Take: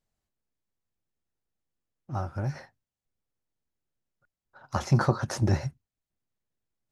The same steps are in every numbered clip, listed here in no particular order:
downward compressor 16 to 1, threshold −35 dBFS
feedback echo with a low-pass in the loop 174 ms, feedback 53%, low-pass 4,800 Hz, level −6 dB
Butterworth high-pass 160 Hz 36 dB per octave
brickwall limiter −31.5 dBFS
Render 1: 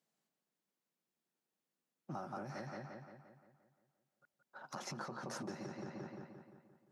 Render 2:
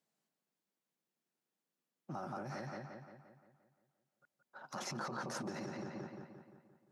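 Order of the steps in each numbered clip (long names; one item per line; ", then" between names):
feedback echo with a low-pass in the loop, then downward compressor, then brickwall limiter, then Butterworth high-pass
feedback echo with a low-pass in the loop, then brickwall limiter, then Butterworth high-pass, then downward compressor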